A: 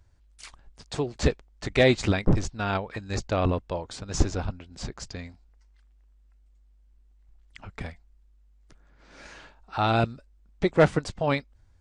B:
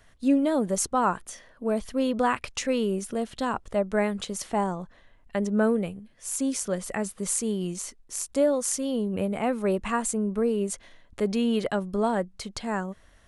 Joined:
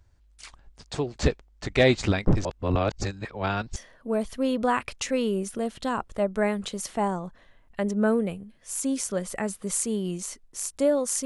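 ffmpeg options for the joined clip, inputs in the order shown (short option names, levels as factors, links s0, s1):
-filter_complex "[0:a]apad=whole_dur=11.25,atrim=end=11.25,asplit=2[s0][s1];[s0]atrim=end=2.452[s2];[s1]atrim=start=2.448:end=3.762,asetpts=PTS-STARTPTS,areverse[s3];[1:a]atrim=start=1.318:end=8.81[s4];[s2][s3]acrossfade=d=0.004:c1=hsin:c2=hsin[s5];[s5][s4]acrossfade=d=0.004:c1=hsin:c2=hsin"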